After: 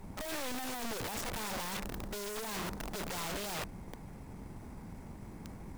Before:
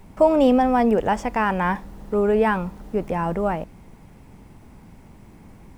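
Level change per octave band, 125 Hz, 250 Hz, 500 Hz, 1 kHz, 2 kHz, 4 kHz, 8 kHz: −13.0 dB, −21.0 dB, −22.5 dB, −19.0 dB, −12.5 dB, −0.5 dB, can't be measured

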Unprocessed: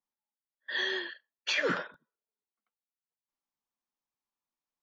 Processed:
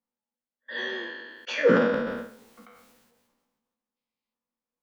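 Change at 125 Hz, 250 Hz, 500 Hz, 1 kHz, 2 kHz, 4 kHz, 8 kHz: +12.5 dB, +14.0 dB, +13.5 dB, +7.0 dB, +2.5 dB, −3.0 dB, can't be measured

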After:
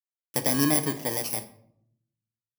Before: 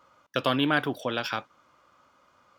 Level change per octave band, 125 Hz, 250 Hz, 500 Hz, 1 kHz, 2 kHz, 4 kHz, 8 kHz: +2.5, +1.5, −2.0, −5.0, −6.5, −3.0, +23.0 decibels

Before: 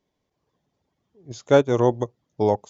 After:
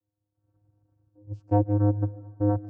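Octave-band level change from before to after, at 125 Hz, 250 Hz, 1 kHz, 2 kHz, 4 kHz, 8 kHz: +4.5 dB, −1.0 dB, −7.0 dB, below −15 dB, below −35 dB, can't be measured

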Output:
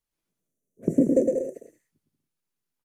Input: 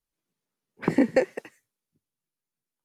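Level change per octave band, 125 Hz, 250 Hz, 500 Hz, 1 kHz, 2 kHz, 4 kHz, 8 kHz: +2.0 dB, +2.0 dB, +2.0 dB, below −15 dB, below −25 dB, below −20 dB, +2.0 dB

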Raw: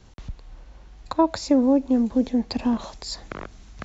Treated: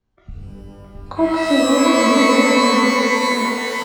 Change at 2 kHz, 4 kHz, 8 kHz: +24.0 dB, +14.5 dB, can't be measured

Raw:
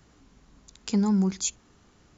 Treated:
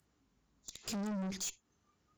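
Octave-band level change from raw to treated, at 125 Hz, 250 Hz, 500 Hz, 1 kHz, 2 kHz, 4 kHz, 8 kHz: −15.0 dB, −15.0 dB, −11.5 dB, −10.0 dB, −5.0 dB, −7.0 dB, can't be measured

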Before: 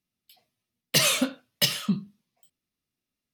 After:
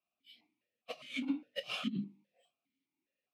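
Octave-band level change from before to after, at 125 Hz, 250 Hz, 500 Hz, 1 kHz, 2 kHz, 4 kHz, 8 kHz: −15.0, −8.0, −13.0, −13.5, −14.0, −18.0, −32.5 decibels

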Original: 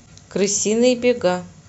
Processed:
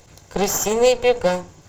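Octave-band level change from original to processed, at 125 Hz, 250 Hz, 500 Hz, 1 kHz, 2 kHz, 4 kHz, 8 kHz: −1.5 dB, −7.0 dB, +0.5 dB, +5.0 dB, +1.0 dB, −0.5 dB, can't be measured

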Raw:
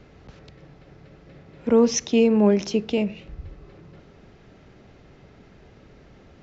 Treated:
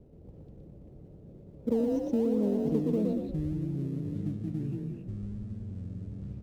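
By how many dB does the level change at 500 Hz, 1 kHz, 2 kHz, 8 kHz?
−9.5 dB, −13.5 dB, below −20 dB, can't be measured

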